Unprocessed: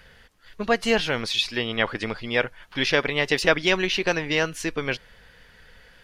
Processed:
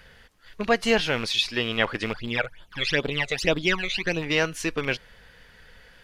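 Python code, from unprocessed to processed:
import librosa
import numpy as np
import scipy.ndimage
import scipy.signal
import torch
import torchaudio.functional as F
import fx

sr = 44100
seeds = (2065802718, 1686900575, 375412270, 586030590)

y = fx.rattle_buzz(x, sr, strikes_db=-31.0, level_db=-24.0)
y = fx.phaser_stages(y, sr, stages=12, low_hz=280.0, high_hz=2100.0, hz=fx.line((2.13, 3.2), (4.21, 1.3)), feedback_pct=40, at=(2.13, 4.21), fade=0.02)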